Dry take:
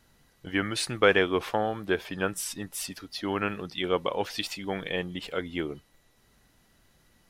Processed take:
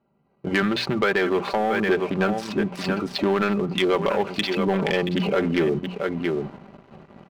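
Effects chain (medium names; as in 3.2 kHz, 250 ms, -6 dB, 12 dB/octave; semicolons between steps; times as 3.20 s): local Wiener filter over 25 samples; peaking EQ 1.8 kHz +3.5 dB 2.1 oct; comb 5.1 ms, depth 53%; on a send: delay 677 ms -15 dB; on the sum: transient shaper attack -1 dB, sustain +6 dB; distance through air 250 m; level rider gain up to 15.5 dB; high-pass 130 Hz 12 dB/octave; hum notches 60/120/180/240 Hz; compression 3:1, threshold -30 dBFS, peak gain reduction 15 dB; waveshaping leveller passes 2; trim +2 dB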